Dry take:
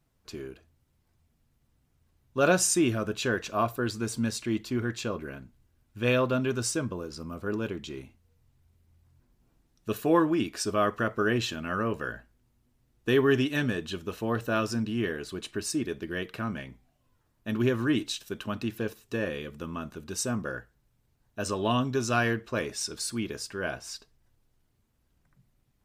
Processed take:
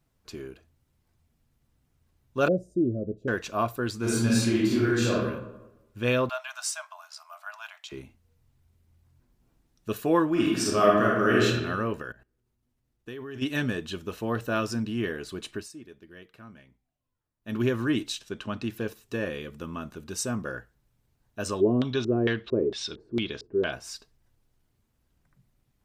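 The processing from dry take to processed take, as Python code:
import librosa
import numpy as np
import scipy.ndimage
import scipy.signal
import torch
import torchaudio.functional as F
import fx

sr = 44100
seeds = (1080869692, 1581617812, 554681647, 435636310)

y = fx.ellip_lowpass(x, sr, hz=590.0, order=4, stop_db=40, at=(2.48, 3.28))
y = fx.reverb_throw(y, sr, start_s=3.98, length_s=1.16, rt60_s=1.0, drr_db=-6.5)
y = fx.brickwall_highpass(y, sr, low_hz=610.0, at=(6.29, 7.92))
y = fx.reverb_throw(y, sr, start_s=10.31, length_s=1.14, rt60_s=1.1, drr_db=-4.0)
y = fx.level_steps(y, sr, step_db=19, at=(12.01, 13.41), fade=0.02)
y = fx.lowpass(y, sr, hz=7400.0, slope=12, at=(18.19, 18.64))
y = fx.filter_lfo_lowpass(y, sr, shape='square', hz=2.2, low_hz=390.0, high_hz=3600.0, q=4.7, at=(21.6, 23.71), fade=0.02)
y = fx.edit(y, sr, fx.fade_down_up(start_s=15.54, length_s=2.02, db=-15.0, fade_s=0.15), tone=tone)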